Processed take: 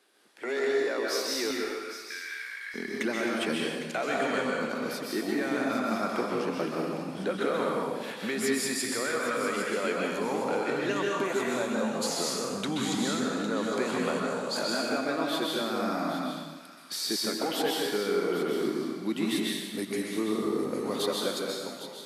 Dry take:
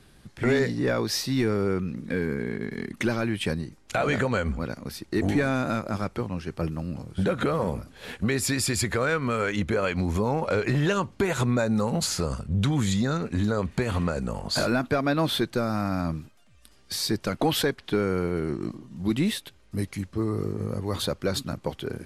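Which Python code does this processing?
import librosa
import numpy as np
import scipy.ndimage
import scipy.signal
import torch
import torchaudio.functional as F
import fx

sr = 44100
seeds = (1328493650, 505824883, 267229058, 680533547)

y = fx.fade_out_tail(x, sr, length_s=1.45)
y = fx.highpass(y, sr, hz=fx.steps((0.0, 350.0), (1.51, 1500.0), (2.74, 230.0)), slope=24)
y = fx.rider(y, sr, range_db=5, speed_s=0.5)
y = fx.echo_wet_highpass(y, sr, ms=807, feedback_pct=31, hz=2000.0, wet_db=-11)
y = fx.rev_plate(y, sr, seeds[0], rt60_s=1.3, hf_ratio=1.0, predelay_ms=115, drr_db=-2.5)
y = y * librosa.db_to_amplitude(-5.0)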